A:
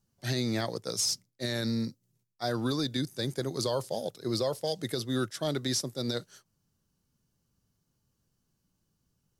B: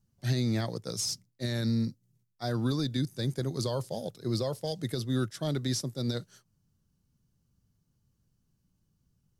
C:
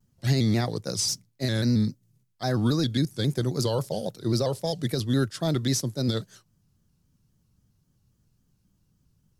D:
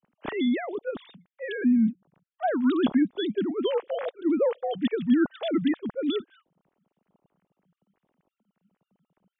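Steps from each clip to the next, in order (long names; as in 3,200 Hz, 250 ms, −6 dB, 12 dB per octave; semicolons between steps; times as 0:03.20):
bass and treble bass +9 dB, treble 0 dB; level −3.5 dB
pitch modulation by a square or saw wave square 3.7 Hz, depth 100 cents; level +5.5 dB
three sine waves on the formant tracks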